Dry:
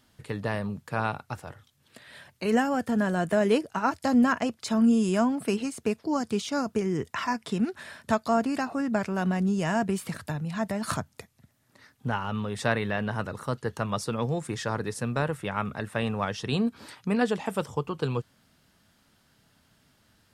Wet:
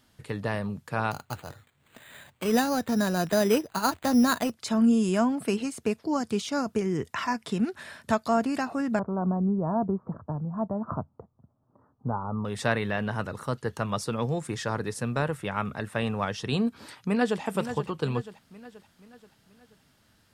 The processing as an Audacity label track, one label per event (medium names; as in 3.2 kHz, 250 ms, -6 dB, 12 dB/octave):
1.110000	4.520000	careless resampling rate divided by 8×, down none, up hold
8.990000	12.450000	steep low-pass 1.2 kHz 48 dB/octave
16.730000	17.420000	echo throw 480 ms, feedback 50%, level -10 dB